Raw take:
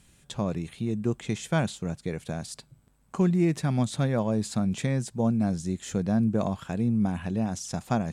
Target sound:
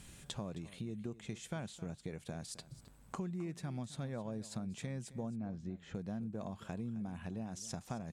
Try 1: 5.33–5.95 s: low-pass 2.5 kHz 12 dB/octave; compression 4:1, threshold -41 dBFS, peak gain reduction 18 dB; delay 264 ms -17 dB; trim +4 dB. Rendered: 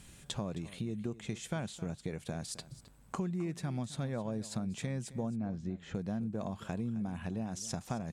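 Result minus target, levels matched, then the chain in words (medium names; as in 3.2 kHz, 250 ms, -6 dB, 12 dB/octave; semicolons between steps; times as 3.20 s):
compression: peak gain reduction -5 dB
5.33–5.95 s: low-pass 2.5 kHz 12 dB/octave; compression 4:1, threshold -47.5 dBFS, peak gain reduction 23 dB; delay 264 ms -17 dB; trim +4 dB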